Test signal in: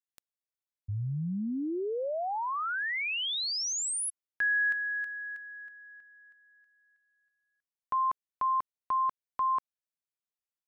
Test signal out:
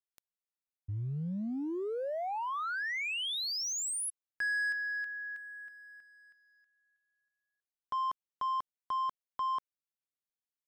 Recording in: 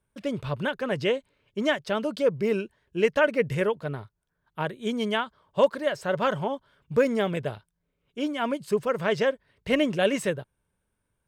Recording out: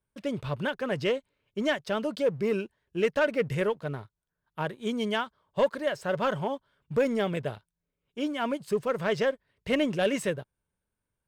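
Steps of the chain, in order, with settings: waveshaping leveller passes 1; trim -5.5 dB

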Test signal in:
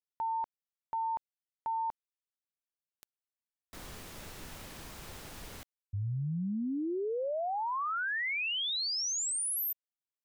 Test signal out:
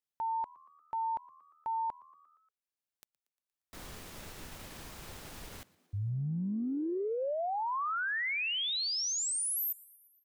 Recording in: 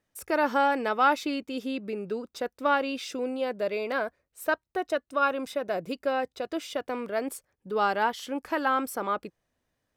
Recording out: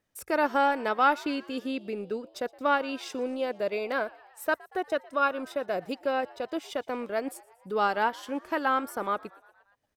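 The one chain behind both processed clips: transient shaper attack -1 dB, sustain -6 dB; on a send: frequency-shifting echo 117 ms, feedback 64%, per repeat +79 Hz, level -23.5 dB

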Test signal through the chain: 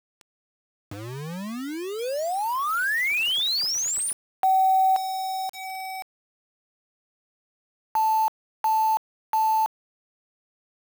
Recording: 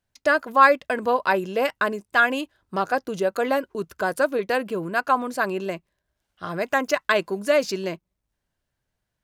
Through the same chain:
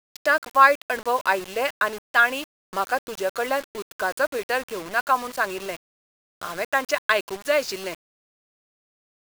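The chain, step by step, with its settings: expander -47 dBFS; frequency weighting A; upward compressor, threshold -33 dBFS; word length cut 6-bit, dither none

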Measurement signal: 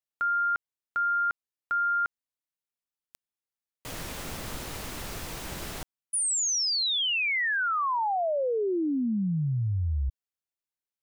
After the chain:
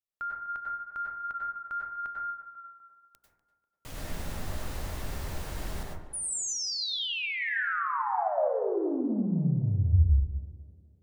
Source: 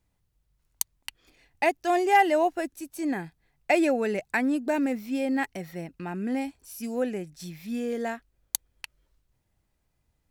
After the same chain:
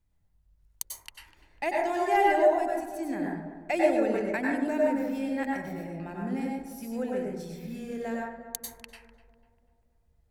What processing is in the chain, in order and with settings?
bass shelf 120 Hz +12 dB; hum notches 60/120/180/240/300/360/420/480/540 Hz; on a send: tape echo 247 ms, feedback 59%, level -11.5 dB, low-pass 1.5 kHz; on the sum: plate-style reverb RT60 0.69 s, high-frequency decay 0.3×, pre-delay 85 ms, DRR -2.5 dB; trim -7.5 dB

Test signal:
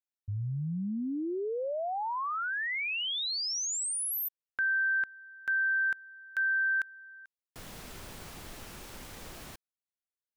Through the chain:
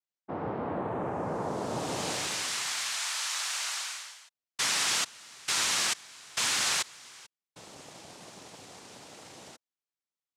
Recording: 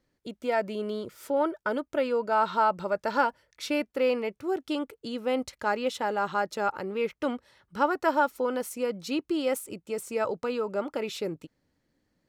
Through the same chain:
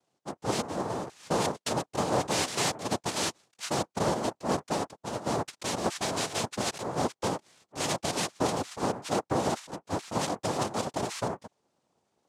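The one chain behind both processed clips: peak limiter -20.5 dBFS; noise-vocoded speech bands 2

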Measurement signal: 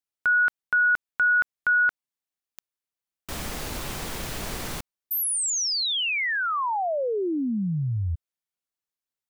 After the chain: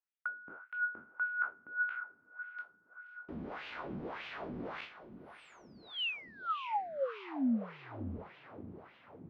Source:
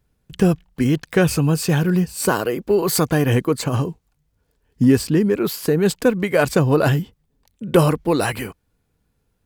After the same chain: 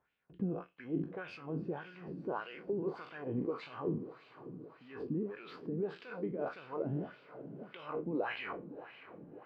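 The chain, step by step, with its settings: spectral sustain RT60 0.35 s; dynamic bell 1.8 kHz, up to -6 dB, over -43 dBFS, Q 4.7; gain riding within 5 dB 0.5 s; peak limiter -12.5 dBFS; reverse; compression 8:1, threshold -31 dBFS; reverse; distance through air 300 m; echo that smears into a reverb 597 ms, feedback 61%, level -12.5 dB; wah-wah 1.7 Hz 220–2800 Hz, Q 2.2; trim +4 dB

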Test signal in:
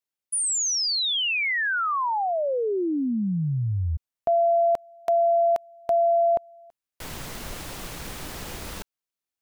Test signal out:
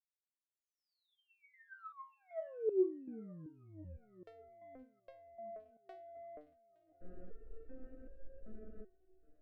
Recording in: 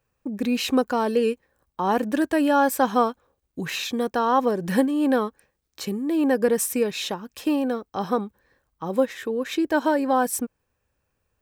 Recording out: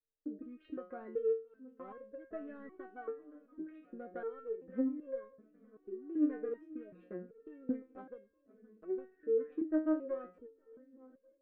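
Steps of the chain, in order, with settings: local Wiener filter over 41 samples; low-pass 1.6 kHz 24 dB/octave; gate -44 dBFS, range -12 dB; compression, threshold -25 dBFS; static phaser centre 360 Hz, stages 4; on a send: shuffle delay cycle 866 ms, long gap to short 1.5:1, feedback 57%, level -22.5 dB; on the sum: resonator arpeggio 2.6 Hz 150–540 Hz; trim +5.5 dB

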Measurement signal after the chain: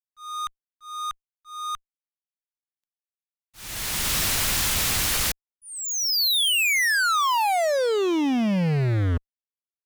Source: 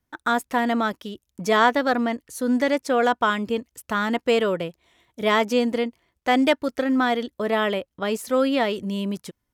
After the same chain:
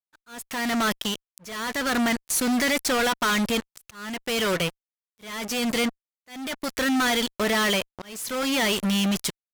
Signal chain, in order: amplifier tone stack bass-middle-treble 5-5-5; fuzz box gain 52 dB, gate -52 dBFS; slow attack 618 ms; trim -7.5 dB

